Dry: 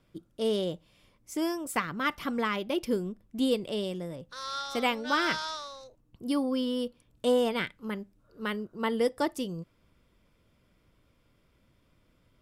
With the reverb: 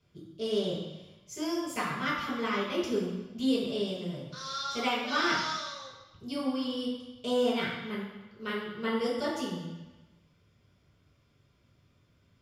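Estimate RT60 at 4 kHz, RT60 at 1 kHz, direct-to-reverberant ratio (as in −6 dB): 1.1 s, 1.1 s, −7.0 dB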